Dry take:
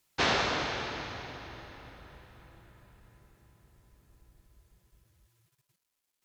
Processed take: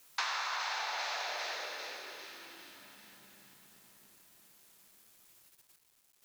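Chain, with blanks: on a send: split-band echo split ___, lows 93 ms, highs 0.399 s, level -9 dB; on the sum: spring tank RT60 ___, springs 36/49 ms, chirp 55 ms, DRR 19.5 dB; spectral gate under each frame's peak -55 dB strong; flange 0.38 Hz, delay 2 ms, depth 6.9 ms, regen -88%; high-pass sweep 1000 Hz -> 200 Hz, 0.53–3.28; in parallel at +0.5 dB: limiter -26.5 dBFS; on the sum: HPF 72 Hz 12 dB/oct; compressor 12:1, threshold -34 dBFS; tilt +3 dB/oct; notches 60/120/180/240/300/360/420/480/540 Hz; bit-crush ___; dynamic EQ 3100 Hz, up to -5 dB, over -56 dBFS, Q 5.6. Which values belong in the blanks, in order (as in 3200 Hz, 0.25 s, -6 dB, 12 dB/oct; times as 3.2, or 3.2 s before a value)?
1500 Hz, 2.3 s, 10-bit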